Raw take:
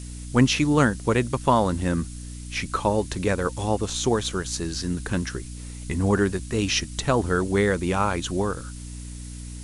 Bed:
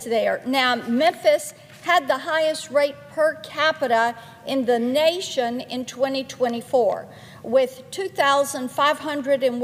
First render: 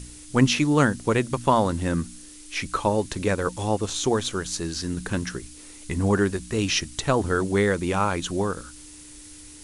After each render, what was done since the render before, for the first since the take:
hum removal 60 Hz, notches 4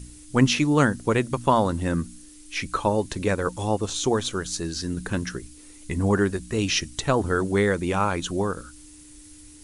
broadband denoise 6 dB, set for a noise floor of −45 dBFS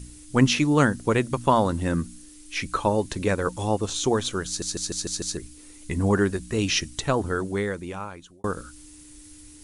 0:04.47: stutter in place 0.15 s, 6 plays
0:06.86–0:08.44: fade out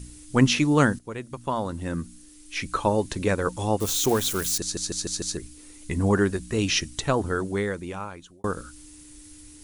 0:00.99–0:02.90: fade in, from −16 dB
0:03.80–0:04.58: spike at every zero crossing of −23 dBFS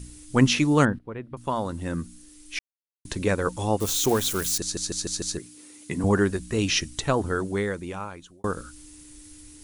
0:00.85–0:01.37: high-frequency loss of the air 440 metres
0:02.59–0:03.05: silence
0:05.39–0:06.04: high-pass filter 120 Hz 24 dB per octave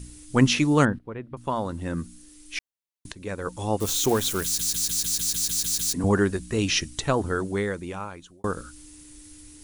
0:01.14–0:01.97: parametric band 13,000 Hz −3.5 dB 2.2 octaves
0:03.12–0:03.85: fade in, from −17.5 dB
0:04.44: stutter in place 0.15 s, 10 plays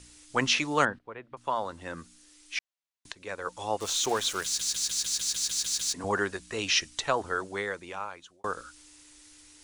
three-way crossover with the lows and the highs turned down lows −16 dB, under 500 Hz, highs −17 dB, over 7,900 Hz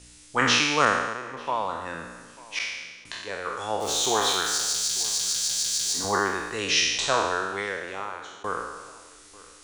peak hold with a decay on every bin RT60 1.25 s
feedback echo with a low-pass in the loop 892 ms, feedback 38%, low-pass 2,000 Hz, level −20.5 dB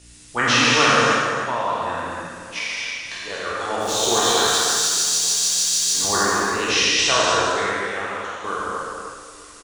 single-tap delay 307 ms −7.5 dB
reverb whose tail is shaped and stops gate 310 ms flat, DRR −4 dB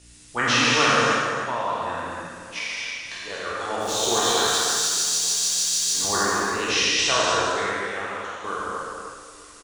level −3 dB

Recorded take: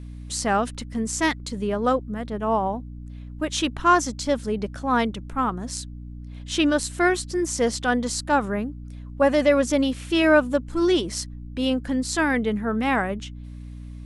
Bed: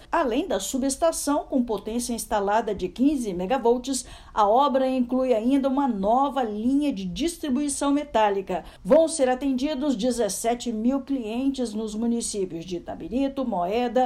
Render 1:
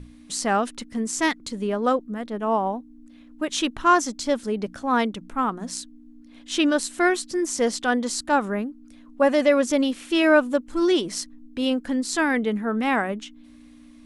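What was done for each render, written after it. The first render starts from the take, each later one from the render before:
mains-hum notches 60/120/180 Hz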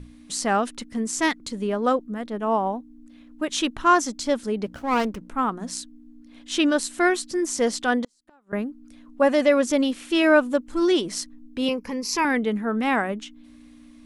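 0:04.66–0:05.29: windowed peak hold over 9 samples
0:08.04–0:08.53: gate with flip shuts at −18 dBFS, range −38 dB
0:11.68–0:12.25: EQ curve with evenly spaced ripples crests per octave 0.82, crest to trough 15 dB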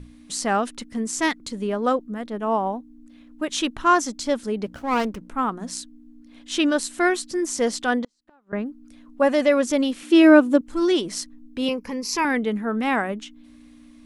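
0:07.99–0:08.66: high-frequency loss of the air 93 metres
0:10.03–0:10.61: high-pass with resonance 290 Hz, resonance Q 2.7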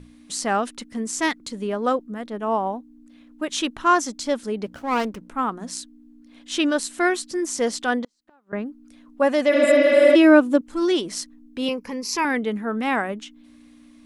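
0:09.55–0:10.13: healed spectral selection 270–7,000 Hz before
low-shelf EQ 110 Hz −7.5 dB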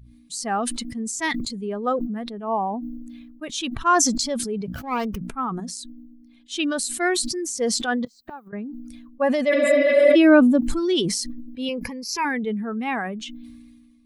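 spectral dynamics exaggerated over time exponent 1.5
level that may fall only so fast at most 31 dB per second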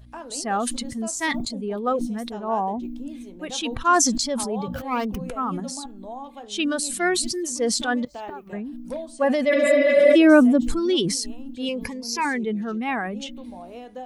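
mix in bed −15.5 dB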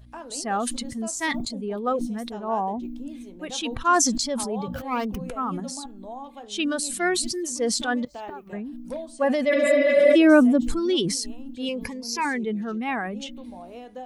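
level −1.5 dB

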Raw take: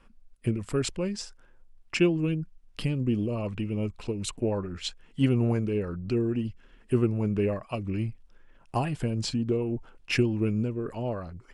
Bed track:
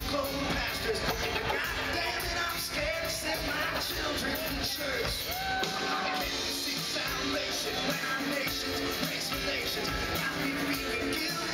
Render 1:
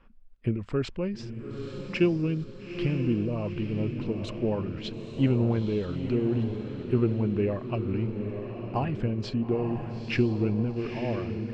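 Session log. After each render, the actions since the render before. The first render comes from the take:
high-frequency loss of the air 210 metres
on a send: feedback delay with all-pass diffusion 895 ms, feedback 49%, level −7 dB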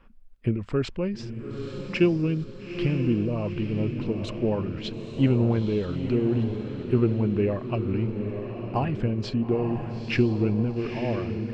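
level +2.5 dB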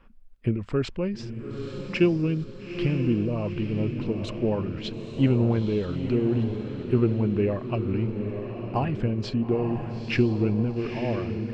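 no processing that can be heard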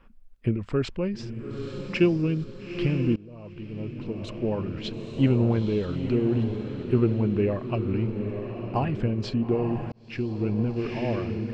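0:03.16–0:04.89: fade in, from −23.5 dB
0:09.92–0:10.67: fade in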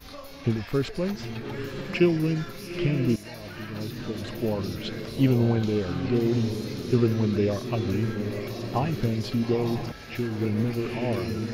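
mix in bed track −11 dB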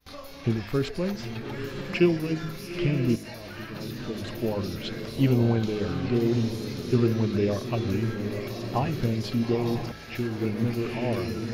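noise gate with hold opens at −34 dBFS
hum removal 52.62 Hz, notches 10

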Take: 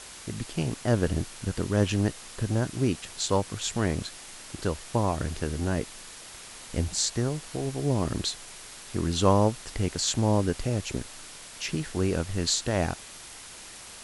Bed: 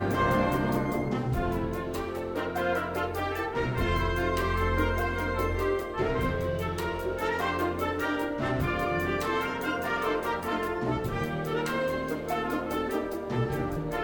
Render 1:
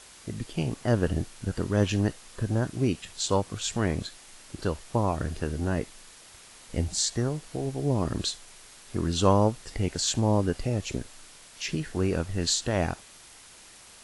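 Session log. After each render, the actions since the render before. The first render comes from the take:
noise reduction from a noise print 6 dB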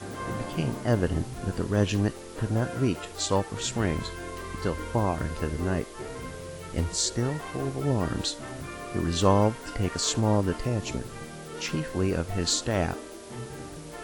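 mix in bed −10 dB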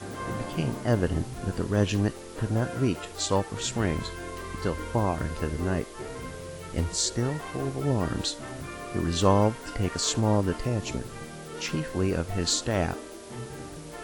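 no processing that can be heard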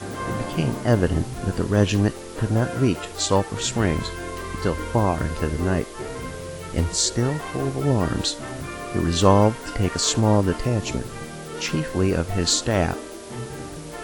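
level +5.5 dB

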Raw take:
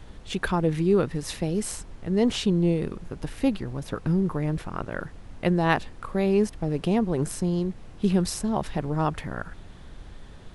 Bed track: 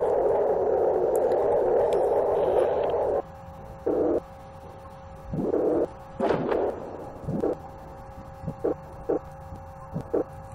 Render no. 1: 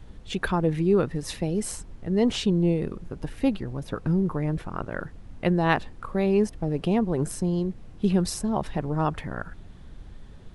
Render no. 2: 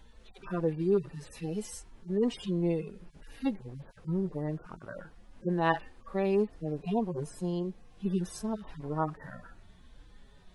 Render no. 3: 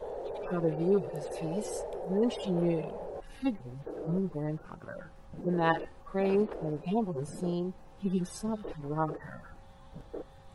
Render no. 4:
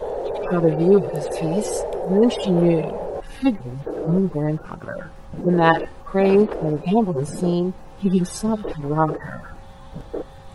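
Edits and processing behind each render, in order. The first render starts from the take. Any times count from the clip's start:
broadband denoise 6 dB, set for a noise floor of −45 dBFS
harmonic-percussive split with one part muted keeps harmonic; low-shelf EQ 340 Hz −10.5 dB
mix in bed track −15.5 dB
level +12 dB; brickwall limiter −2 dBFS, peak gain reduction 1 dB

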